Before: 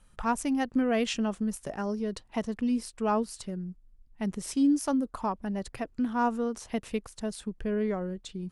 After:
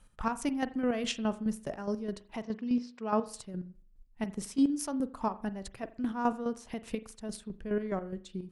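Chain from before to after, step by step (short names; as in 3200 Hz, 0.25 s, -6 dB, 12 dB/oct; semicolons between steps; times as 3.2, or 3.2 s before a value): 2.42–3.26 elliptic band-pass 160–5500 Hz; chopper 4.8 Hz, depth 60%, duty 35%; reverb, pre-delay 41 ms, DRR 14 dB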